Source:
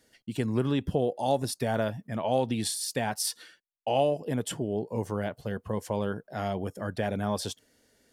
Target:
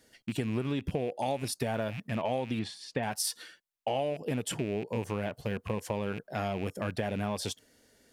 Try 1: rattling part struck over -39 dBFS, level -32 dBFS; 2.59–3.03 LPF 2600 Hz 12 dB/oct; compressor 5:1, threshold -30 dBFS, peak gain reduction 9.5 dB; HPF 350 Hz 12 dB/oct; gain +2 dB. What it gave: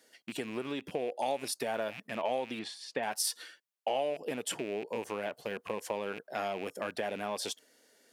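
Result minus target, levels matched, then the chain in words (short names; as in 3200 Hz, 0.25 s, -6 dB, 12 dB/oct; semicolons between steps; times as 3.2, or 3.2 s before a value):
250 Hz band -5.0 dB
rattling part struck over -39 dBFS, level -32 dBFS; 2.59–3.03 LPF 2600 Hz 12 dB/oct; compressor 5:1, threshold -30 dBFS, peak gain reduction 9.5 dB; gain +2 dB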